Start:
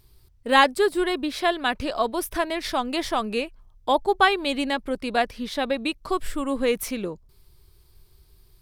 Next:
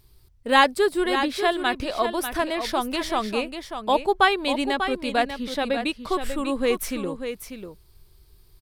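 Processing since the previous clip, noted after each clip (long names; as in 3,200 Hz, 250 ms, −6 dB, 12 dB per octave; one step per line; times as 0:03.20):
single-tap delay 593 ms −8.5 dB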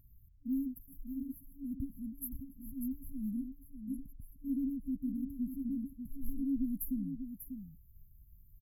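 brick-wall band-stop 290–11,000 Hz
level −4.5 dB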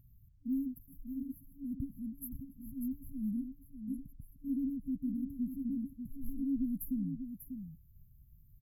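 parametric band 140 Hz +9 dB 1.5 octaves
level −3.5 dB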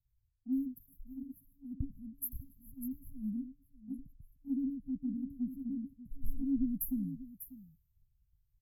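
multiband upward and downward expander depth 100%
level −2 dB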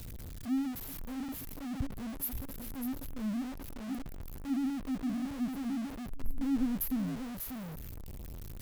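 converter with a step at zero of −37 dBFS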